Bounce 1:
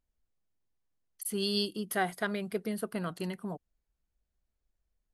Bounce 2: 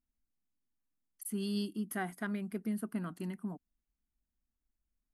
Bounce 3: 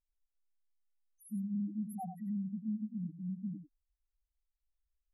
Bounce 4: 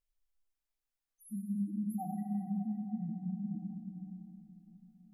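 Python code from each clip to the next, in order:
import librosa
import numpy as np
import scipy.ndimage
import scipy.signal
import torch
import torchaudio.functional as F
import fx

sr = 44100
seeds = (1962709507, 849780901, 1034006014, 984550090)

y1 = fx.graphic_eq(x, sr, hz=(125, 250, 500, 4000), db=(-5, 11, -10, -10))
y1 = F.gain(torch.from_numpy(y1), -5.0).numpy()
y2 = 10.0 ** (-34.5 / 20.0) * np.tanh(y1 / 10.0 ** (-34.5 / 20.0))
y2 = fx.spec_topn(y2, sr, count=1)
y2 = y2 + 10.0 ** (-9.0 / 20.0) * np.pad(y2, (int(93 * sr / 1000.0), 0))[:len(y2)]
y2 = F.gain(torch.from_numpy(y2), 7.5).numpy()
y3 = fx.rev_plate(y2, sr, seeds[0], rt60_s=4.1, hf_ratio=0.4, predelay_ms=0, drr_db=1.0)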